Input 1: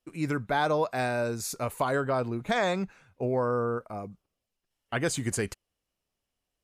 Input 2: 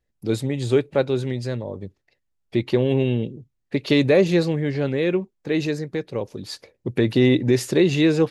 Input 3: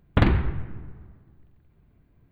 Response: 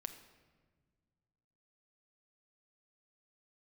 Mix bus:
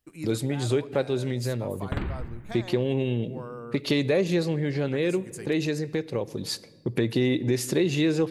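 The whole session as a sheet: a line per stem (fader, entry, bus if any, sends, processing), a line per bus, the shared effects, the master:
-2.0 dB, 0.00 s, no send, auto duck -10 dB, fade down 0.45 s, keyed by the second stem
-1.0 dB, 0.00 s, send -4 dB, gate -40 dBFS, range -7 dB
-8.0 dB, 1.75 s, no send, none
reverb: on, RT60 1.6 s, pre-delay 6 ms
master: treble shelf 8 kHz +9 dB; compression 2:1, threshold -27 dBFS, peak gain reduction 9.5 dB

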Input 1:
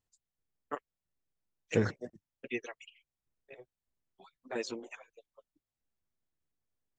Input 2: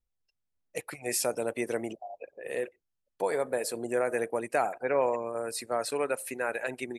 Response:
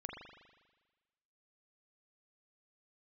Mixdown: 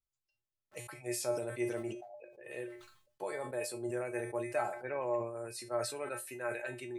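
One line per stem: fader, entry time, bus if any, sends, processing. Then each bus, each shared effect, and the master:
-13.5 dB, 0.00 s, no send, cycle switcher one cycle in 2, inverted; auto duck -11 dB, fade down 2.00 s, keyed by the second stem
+2.5 dB, 0.00 s, no send, treble shelf 11 kHz -3.5 dB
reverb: none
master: feedback comb 120 Hz, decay 0.21 s, harmonics odd, mix 90%; decay stretcher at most 76 dB/s

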